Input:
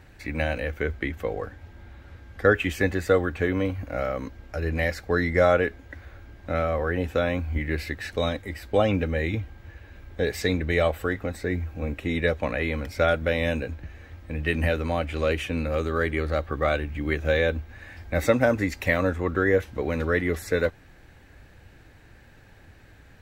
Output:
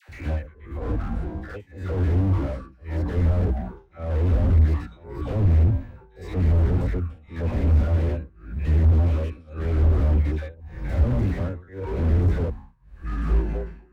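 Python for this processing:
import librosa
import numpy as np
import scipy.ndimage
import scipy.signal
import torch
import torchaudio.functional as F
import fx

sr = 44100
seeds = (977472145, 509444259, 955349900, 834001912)

y = fx.spec_steps(x, sr, hold_ms=100)
y = fx.echo_pitch(y, sr, ms=150, semitones=-7, count=3, db_per_echo=-6.0)
y = fx.stretch_vocoder(y, sr, factor=0.6)
y = fx.high_shelf(y, sr, hz=4100.0, db=-5.5)
y = fx.dispersion(y, sr, late='lows', ms=90.0, hz=810.0)
y = y * (1.0 - 0.98 / 2.0 + 0.98 / 2.0 * np.cos(2.0 * np.pi * 0.9 * (np.arange(len(y)) / sr)))
y = fx.peak_eq(y, sr, hz=73.0, db=10.0, octaves=1.5)
y = fx.slew_limit(y, sr, full_power_hz=8.7)
y = y * librosa.db_to_amplitude(6.5)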